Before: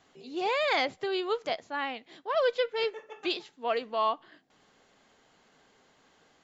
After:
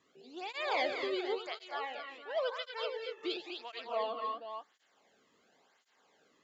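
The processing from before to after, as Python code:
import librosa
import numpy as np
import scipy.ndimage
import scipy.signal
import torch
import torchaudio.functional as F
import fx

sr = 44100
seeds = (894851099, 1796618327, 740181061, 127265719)

p1 = fx.highpass(x, sr, hz=450.0, slope=12, at=(1.47, 3.18))
p2 = p1 + fx.echo_multitap(p1, sr, ms=(85, 212, 246, 477), db=(-11.5, -10.5, -6.0, -9.5), dry=0)
p3 = fx.flanger_cancel(p2, sr, hz=0.94, depth_ms=1.4)
y = p3 * librosa.db_to_amplitude(-5.0)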